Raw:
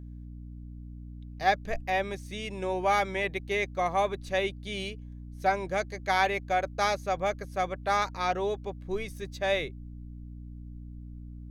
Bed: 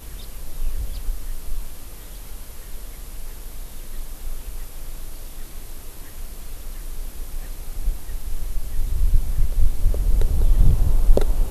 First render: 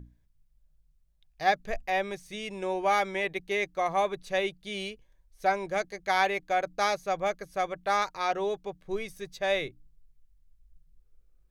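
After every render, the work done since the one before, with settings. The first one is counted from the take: notches 60/120/180/240/300 Hz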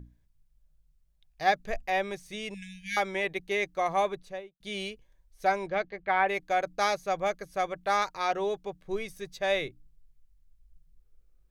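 2.54–2.97 brick-wall FIR band-stop 240–1600 Hz; 4.02–4.6 studio fade out; 5.67–6.28 LPF 4700 Hz -> 2200 Hz 24 dB/oct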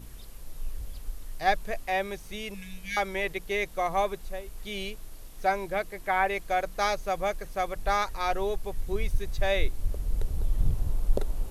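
add bed -10 dB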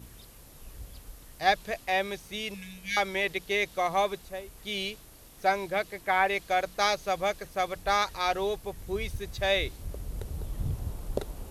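HPF 60 Hz 12 dB/oct; dynamic EQ 3900 Hz, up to +6 dB, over -48 dBFS, Q 1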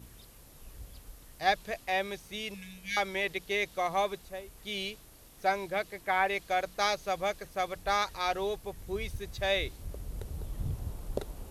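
gain -3 dB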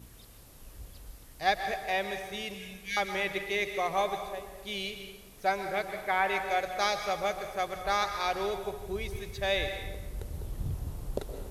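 plate-style reverb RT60 1.3 s, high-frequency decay 0.65×, pre-delay 0.11 s, DRR 6.5 dB

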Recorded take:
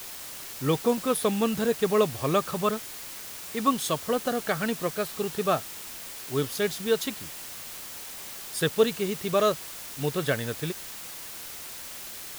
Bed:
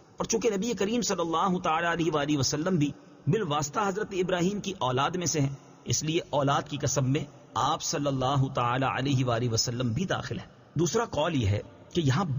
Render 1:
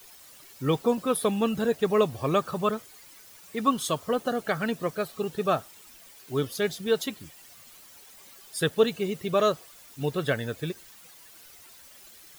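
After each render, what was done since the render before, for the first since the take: denoiser 13 dB, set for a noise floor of -40 dBFS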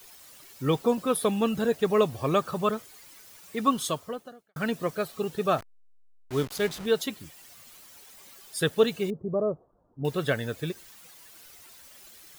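3.85–4.56 fade out quadratic; 5.58–6.86 level-crossing sampler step -35.5 dBFS; 9.1–10.05 Gaussian blur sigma 11 samples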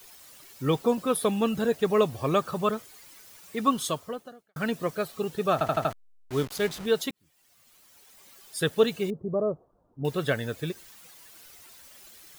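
5.53 stutter in place 0.08 s, 5 plays; 7.11–8.76 fade in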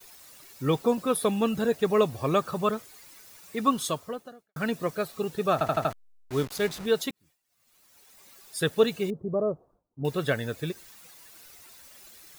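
notch 3100 Hz, Q 19; expander -54 dBFS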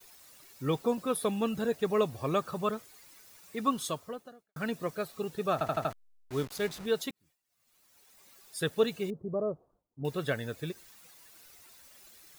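gain -5 dB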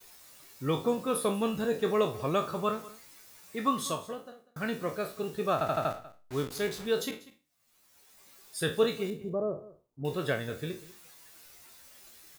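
spectral trails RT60 0.32 s; echo 0.193 s -19 dB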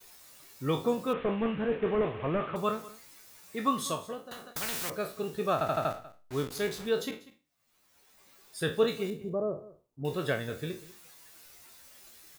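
1.13–2.56 delta modulation 16 kbps, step -38 dBFS; 4.31–4.9 spectral compressor 4:1; 6.89–8.88 bell 12000 Hz -5.5 dB 2.1 oct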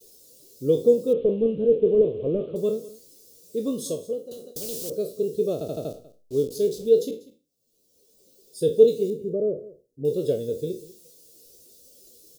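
EQ curve 110 Hz 0 dB, 330 Hz +6 dB, 480 Hz +13 dB, 840 Hz -19 dB, 1900 Hz -29 dB, 3000 Hz -8 dB, 5100 Hz +2 dB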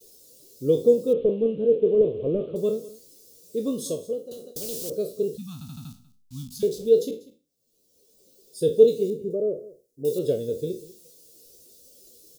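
1.3–2.01 low shelf 110 Hz -10 dB; 5.37–6.63 Chebyshev band-stop 250–890 Hz, order 4; 9.3–10.19 tone controls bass -6 dB, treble +11 dB

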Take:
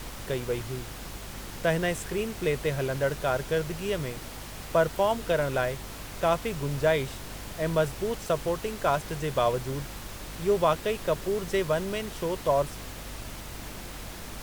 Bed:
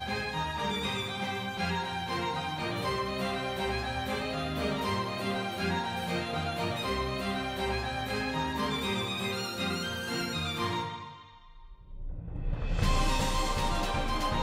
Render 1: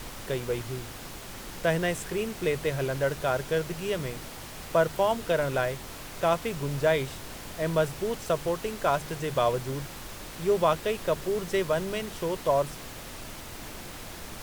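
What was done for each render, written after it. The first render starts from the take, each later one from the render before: de-hum 50 Hz, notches 5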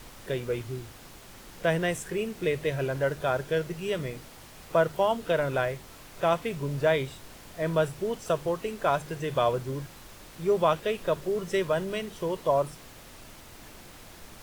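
noise print and reduce 7 dB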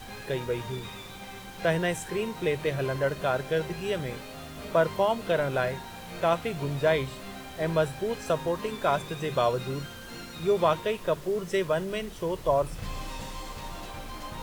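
add bed -9.5 dB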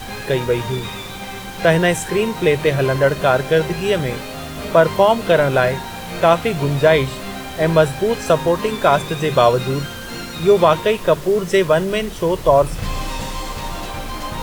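gain +12 dB; limiter -2 dBFS, peak gain reduction 2.5 dB

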